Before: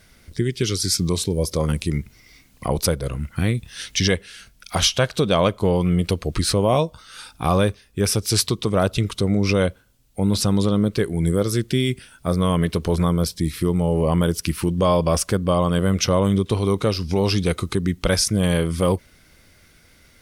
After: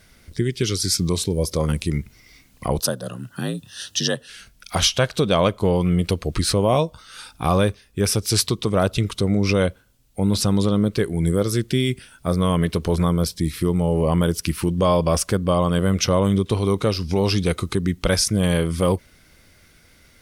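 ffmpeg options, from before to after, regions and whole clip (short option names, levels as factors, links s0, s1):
-filter_complex "[0:a]asettb=1/sr,asplit=3[s0][s1][s2];[s0]atrim=end=2.804[s3];[s1]atrim=start=2.8:end=4.29,asetpts=PTS-STARTPTS,afade=t=in:d=0.004:c=qsin,afade=t=out:st=1.486:d=0.004:c=qsin,lowshelf=f=420:g=-7,afreqshift=50,asuperstop=centerf=2200:order=4:qfactor=2.8[s4];[s2]atrim=start=4.286[s5];[s3][s4]acrossfade=d=0.004:c1=hsin:c2=qsin[s6];[s6][s5]acrossfade=d=0.004:c1=qsin:c2=hsin"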